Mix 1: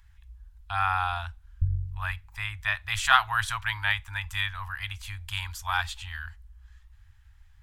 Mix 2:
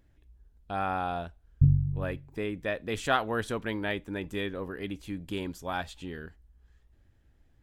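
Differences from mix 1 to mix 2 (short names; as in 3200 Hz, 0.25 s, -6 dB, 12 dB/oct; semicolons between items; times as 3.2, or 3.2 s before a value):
speech -9.0 dB; master: remove inverse Chebyshev band-stop 160–560 Hz, stop band 40 dB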